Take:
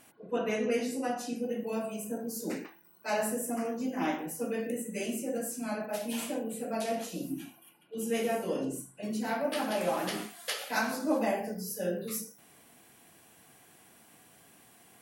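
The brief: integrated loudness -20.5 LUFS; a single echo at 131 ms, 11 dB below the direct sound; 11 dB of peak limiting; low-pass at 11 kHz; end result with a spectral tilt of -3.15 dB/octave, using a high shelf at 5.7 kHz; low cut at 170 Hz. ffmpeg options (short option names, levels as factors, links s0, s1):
-af "highpass=170,lowpass=11000,highshelf=f=5700:g=5.5,alimiter=level_in=1.33:limit=0.0631:level=0:latency=1,volume=0.75,aecho=1:1:131:0.282,volume=5.96"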